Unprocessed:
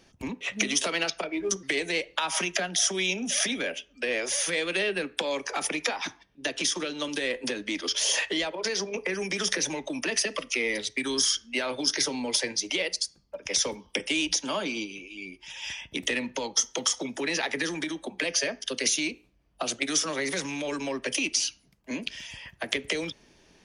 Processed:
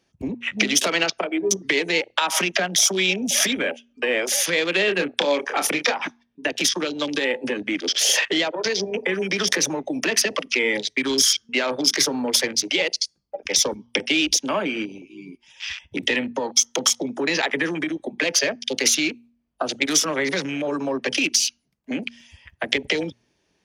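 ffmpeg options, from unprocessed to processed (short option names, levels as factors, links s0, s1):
-filter_complex "[0:a]asettb=1/sr,asplit=3[s0][s1][s2];[s0]atrim=end=4.854[s3];[s1]atrim=start=4.85:end=5.92,asetpts=PTS-STARTPTS,afade=t=in:d=0.004:c=qsin,afade=t=out:st=1.066:d=0.004:c=qsin,asplit=2[s4][s5];[s5]adelay=28,volume=0.473[s6];[s4][s6]amix=inputs=2:normalize=0,atrim=end_sample=47187[s7];[s2]atrim=start=5.916[s8];[s3][s7]acrossfade=d=0.004:c1=hsin:c2=qsin[s9];[s9][s8]acrossfade=d=0.004:c1=qsin:c2=hsin,afwtdn=0.0158,highpass=53,bandreject=f=118.4:t=h:w=4,bandreject=f=236.8:t=h:w=4,volume=2.24"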